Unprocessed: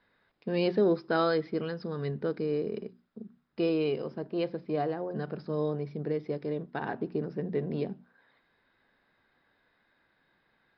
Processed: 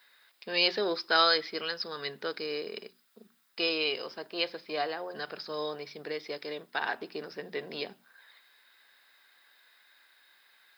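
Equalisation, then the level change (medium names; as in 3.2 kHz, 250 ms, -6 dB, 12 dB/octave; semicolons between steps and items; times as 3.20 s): high-pass 780 Hz 6 dB/octave; tilt EQ +3.5 dB/octave; treble shelf 3.8 kHz +7.5 dB; +5.0 dB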